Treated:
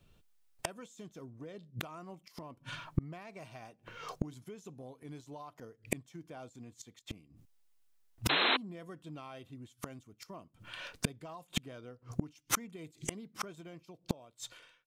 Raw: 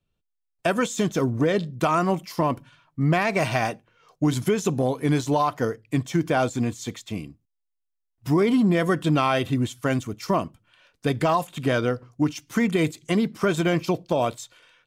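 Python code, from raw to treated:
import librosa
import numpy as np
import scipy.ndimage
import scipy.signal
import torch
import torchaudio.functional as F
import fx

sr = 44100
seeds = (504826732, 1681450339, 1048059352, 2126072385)

y = fx.fade_out_tail(x, sr, length_s=1.45)
y = fx.dynamic_eq(y, sr, hz=1700.0, q=2.0, threshold_db=-41.0, ratio=4.0, max_db=-4)
y = fx.gate_flip(y, sr, shuts_db=-28.0, range_db=-38)
y = fx.spec_paint(y, sr, seeds[0], shape='noise', start_s=8.29, length_s=0.28, low_hz=260.0, high_hz=4200.0, level_db=-41.0)
y = y * 10.0 ** (12.5 / 20.0)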